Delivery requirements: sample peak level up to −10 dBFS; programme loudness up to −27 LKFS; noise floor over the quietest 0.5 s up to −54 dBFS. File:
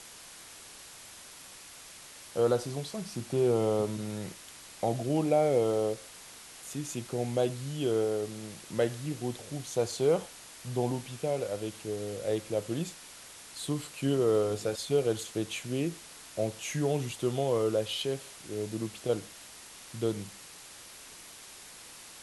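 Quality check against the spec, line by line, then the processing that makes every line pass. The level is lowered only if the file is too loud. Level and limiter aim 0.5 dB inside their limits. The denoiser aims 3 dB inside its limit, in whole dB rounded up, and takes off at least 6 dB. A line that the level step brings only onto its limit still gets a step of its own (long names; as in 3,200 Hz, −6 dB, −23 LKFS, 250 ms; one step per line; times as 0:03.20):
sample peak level −14.0 dBFS: in spec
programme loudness −31.5 LKFS: in spec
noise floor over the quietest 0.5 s −49 dBFS: out of spec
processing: broadband denoise 8 dB, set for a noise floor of −49 dBFS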